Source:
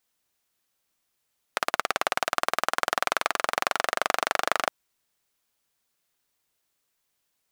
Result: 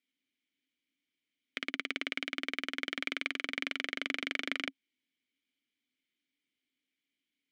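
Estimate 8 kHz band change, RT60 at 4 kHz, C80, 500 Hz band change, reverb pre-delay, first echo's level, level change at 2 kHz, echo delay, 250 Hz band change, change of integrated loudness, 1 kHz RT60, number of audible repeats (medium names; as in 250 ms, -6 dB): -19.0 dB, no reverb, no reverb, -17.0 dB, no reverb, no echo, -6.5 dB, no echo, +1.5 dB, -8.5 dB, no reverb, no echo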